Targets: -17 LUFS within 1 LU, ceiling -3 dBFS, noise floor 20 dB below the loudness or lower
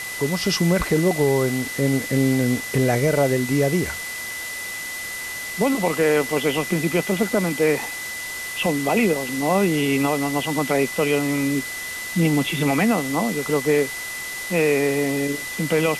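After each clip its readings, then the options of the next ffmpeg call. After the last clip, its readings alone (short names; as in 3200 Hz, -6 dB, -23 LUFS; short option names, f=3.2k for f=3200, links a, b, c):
steady tone 2000 Hz; tone level -30 dBFS; noise floor -31 dBFS; noise floor target -42 dBFS; loudness -21.5 LUFS; peak -8.5 dBFS; loudness target -17.0 LUFS
-> -af "bandreject=f=2k:w=30"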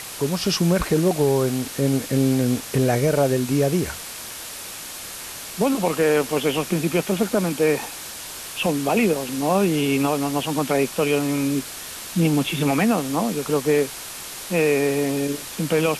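steady tone none; noise floor -35 dBFS; noise floor target -42 dBFS
-> -af "afftdn=nr=7:nf=-35"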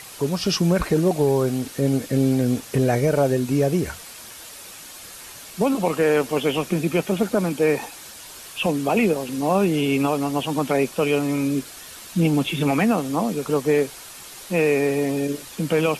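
noise floor -41 dBFS; noise floor target -42 dBFS
-> -af "afftdn=nr=6:nf=-41"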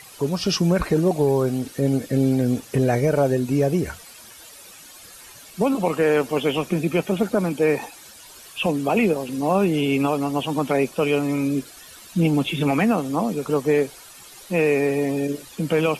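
noise floor -44 dBFS; loudness -22.0 LUFS; peak -9.5 dBFS; loudness target -17.0 LUFS
-> -af "volume=5dB"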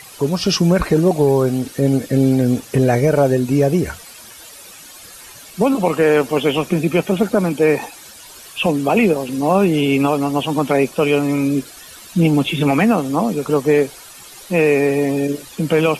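loudness -17.0 LUFS; peak -4.5 dBFS; noise floor -39 dBFS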